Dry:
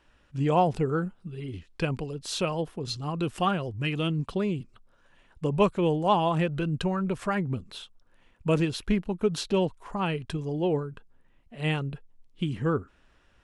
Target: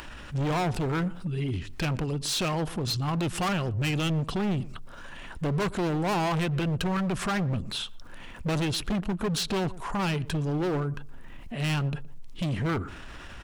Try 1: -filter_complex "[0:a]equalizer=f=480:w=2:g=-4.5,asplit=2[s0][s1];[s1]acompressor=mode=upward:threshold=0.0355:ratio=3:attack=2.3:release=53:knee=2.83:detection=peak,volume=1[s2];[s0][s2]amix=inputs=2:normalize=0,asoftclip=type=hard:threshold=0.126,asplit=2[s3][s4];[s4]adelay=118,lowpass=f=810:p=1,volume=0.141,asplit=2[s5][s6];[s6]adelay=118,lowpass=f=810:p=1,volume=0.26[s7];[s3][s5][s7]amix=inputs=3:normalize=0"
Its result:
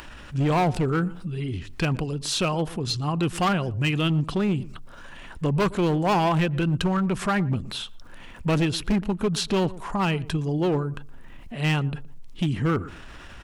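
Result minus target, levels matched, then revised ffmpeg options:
hard clipper: distortion -6 dB
-filter_complex "[0:a]equalizer=f=480:w=2:g=-4.5,asplit=2[s0][s1];[s1]acompressor=mode=upward:threshold=0.0355:ratio=3:attack=2.3:release=53:knee=2.83:detection=peak,volume=1[s2];[s0][s2]amix=inputs=2:normalize=0,asoftclip=type=hard:threshold=0.0562,asplit=2[s3][s4];[s4]adelay=118,lowpass=f=810:p=1,volume=0.141,asplit=2[s5][s6];[s6]adelay=118,lowpass=f=810:p=1,volume=0.26[s7];[s3][s5][s7]amix=inputs=3:normalize=0"

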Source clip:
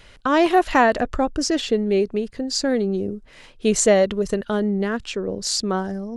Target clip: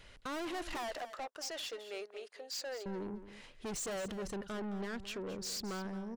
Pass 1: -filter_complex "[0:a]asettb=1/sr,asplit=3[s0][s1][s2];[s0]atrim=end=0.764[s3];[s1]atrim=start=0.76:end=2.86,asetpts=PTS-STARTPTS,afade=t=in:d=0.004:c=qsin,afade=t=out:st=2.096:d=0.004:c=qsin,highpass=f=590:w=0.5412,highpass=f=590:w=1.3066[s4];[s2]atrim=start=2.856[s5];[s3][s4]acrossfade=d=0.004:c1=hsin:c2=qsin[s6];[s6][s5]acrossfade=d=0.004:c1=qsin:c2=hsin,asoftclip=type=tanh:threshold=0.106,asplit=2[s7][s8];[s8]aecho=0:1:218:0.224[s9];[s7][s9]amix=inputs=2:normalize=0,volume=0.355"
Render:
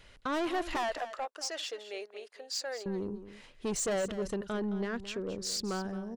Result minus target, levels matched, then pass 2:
saturation: distortion -5 dB
-filter_complex "[0:a]asettb=1/sr,asplit=3[s0][s1][s2];[s0]atrim=end=0.764[s3];[s1]atrim=start=0.76:end=2.86,asetpts=PTS-STARTPTS,afade=t=in:d=0.004:c=qsin,afade=t=out:st=2.096:d=0.004:c=qsin,highpass=f=590:w=0.5412,highpass=f=590:w=1.3066[s4];[s2]atrim=start=2.856[s5];[s3][s4]acrossfade=d=0.004:c1=hsin:c2=qsin[s6];[s6][s5]acrossfade=d=0.004:c1=qsin:c2=hsin,asoftclip=type=tanh:threshold=0.0355,asplit=2[s7][s8];[s8]aecho=0:1:218:0.224[s9];[s7][s9]amix=inputs=2:normalize=0,volume=0.355"

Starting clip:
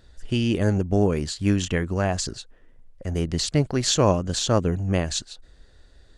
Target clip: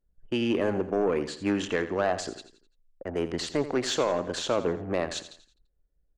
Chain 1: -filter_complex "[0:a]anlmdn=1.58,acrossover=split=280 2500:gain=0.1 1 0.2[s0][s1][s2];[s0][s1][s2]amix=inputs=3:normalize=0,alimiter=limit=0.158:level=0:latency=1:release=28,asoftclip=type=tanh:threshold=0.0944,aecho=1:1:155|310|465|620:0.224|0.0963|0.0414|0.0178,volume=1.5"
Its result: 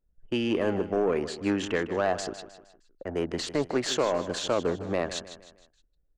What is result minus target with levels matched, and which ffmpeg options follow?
echo 70 ms late
-filter_complex "[0:a]anlmdn=1.58,acrossover=split=280 2500:gain=0.1 1 0.2[s0][s1][s2];[s0][s1][s2]amix=inputs=3:normalize=0,alimiter=limit=0.158:level=0:latency=1:release=28,asoftclip=type=tanh:threshold=0.0944,aecho=1:1:85|170|255|340:0.224|0.0963|0.0414|0.0178,volume=1.5"

